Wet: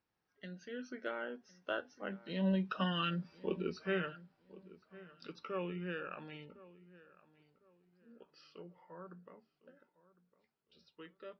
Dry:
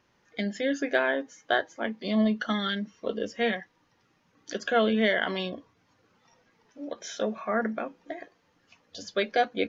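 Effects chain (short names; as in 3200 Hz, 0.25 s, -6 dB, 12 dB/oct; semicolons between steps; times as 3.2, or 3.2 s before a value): Doppler pass-by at 2.71, 17 m/s, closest 9.9 m; varispeed -15%; darkening echo 1.056 s, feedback 28%, low-pass 2400 Hz, level -19 dB; gain -5.5 dB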